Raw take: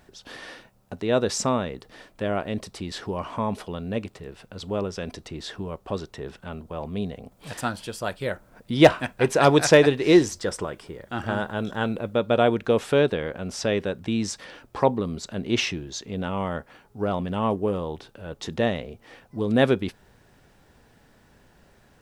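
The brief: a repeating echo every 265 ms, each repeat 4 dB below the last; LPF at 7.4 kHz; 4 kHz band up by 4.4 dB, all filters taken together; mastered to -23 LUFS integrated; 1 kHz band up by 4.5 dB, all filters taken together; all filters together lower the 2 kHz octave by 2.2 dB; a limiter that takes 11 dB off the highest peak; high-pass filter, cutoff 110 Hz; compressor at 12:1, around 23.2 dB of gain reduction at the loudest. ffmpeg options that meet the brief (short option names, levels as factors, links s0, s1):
-af "highpass=110,lowpass=7400,equalizer=f=1000:t=o:g=7.5,equalizer=f=2000:t=o:g=-8,equalizer=f=4000:t=o:g=8,acompressor=threshold=0.0316:ratio=12,alimiter=level_in=1.33:limit=0.0631:level=0:latency=1,volume=0.75,aecho=1:1:265|530|795|1060|1325|1590|1855|2120|2385:0.631|0.398|0.25|0.158|0.0994|0.0626|0.0394|0.0249|0.0157,volume=5.01"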